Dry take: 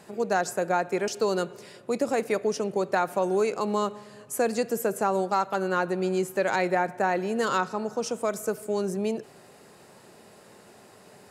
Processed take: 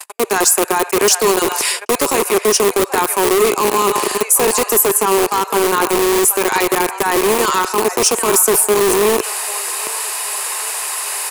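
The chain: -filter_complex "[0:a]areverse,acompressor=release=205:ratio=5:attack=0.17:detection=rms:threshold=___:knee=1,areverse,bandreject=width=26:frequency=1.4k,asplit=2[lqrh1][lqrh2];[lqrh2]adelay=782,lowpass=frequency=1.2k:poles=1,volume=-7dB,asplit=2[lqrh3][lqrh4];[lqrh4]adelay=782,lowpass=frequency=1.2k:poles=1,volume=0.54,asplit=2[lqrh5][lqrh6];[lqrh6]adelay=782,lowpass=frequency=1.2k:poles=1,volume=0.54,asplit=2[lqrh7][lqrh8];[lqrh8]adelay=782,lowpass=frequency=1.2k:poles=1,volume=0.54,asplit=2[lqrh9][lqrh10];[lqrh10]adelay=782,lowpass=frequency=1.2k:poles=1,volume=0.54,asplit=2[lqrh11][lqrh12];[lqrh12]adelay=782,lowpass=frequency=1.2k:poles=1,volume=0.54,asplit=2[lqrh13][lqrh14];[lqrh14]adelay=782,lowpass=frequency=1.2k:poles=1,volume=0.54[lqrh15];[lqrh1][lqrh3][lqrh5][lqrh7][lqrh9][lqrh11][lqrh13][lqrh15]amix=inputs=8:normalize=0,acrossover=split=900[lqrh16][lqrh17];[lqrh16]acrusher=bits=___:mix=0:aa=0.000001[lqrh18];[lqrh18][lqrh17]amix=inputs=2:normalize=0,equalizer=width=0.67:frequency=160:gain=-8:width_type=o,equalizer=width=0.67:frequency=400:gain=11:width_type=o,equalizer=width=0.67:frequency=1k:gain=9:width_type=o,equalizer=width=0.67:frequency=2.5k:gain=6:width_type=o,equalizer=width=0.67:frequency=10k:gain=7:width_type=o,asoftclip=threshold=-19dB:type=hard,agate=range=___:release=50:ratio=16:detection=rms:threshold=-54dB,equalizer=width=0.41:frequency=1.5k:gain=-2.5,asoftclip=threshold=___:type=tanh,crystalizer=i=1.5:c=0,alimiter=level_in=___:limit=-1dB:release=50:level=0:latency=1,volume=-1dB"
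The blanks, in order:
-34dB, 5, -43dB, -34.5dB, 28dB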